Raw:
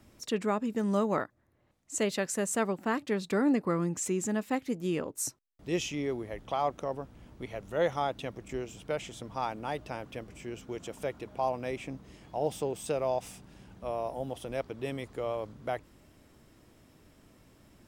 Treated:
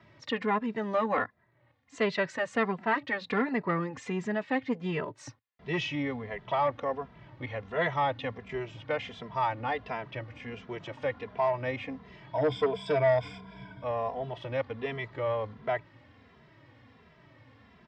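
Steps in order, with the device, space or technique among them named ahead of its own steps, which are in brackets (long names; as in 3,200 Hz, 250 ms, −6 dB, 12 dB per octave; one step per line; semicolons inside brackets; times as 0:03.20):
0:12.33–0:13.84: EQ curve with evenly spaced ripples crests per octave 1.7, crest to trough 18 dB
barber-pole flanger into a guitar amplifier (barber-pole flanger 2.6 ms −1.4 Hz; soft clipping −24 dBFS, distortion −17 dB; loudspeaker in its box 99–4,100 Hz, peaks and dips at 110 Hz +6 dB, 200 Hz −4 dB, 340 Hz −7 dB, 1,000 Hz +5 dB, 1,900 Hz +8 dB)
level +6 dB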